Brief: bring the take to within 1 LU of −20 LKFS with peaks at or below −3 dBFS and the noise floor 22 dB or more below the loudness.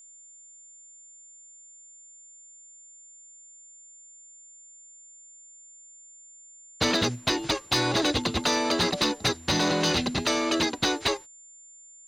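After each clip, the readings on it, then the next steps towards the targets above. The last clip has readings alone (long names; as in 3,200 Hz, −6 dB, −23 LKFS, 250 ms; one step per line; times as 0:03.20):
share of clipped samples 0.2%; peaks flattened at −17.0 dBFS; interfering tone 7,200 Hz; level of the tone −48 dBFS; integrated loudness −25.0 LKFS; sample peak −17.0 dBFS; target loudness −20.0 LKFS
→ clipped peaks rebuilt −17 dBFS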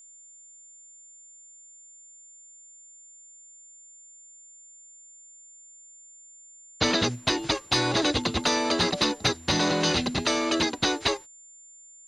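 share of clipped samples 0.0%; interfering tone 7,200 Hz; level of the tone −48 dBFS
→ notch filter 7,200 Hz, Q 30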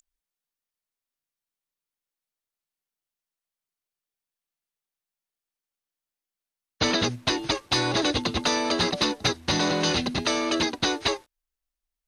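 interfering tone none found; integrated loudness −24.5 LKFS; sample peak −8.0 dBFS; target loudness −20.0 LKFS
→ level +4.5 dB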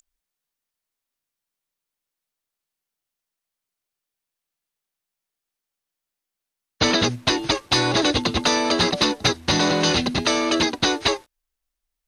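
integrated loudness −20.0 LKFS; sample peak −3.5 dBFS; background noise floor −86 dBFS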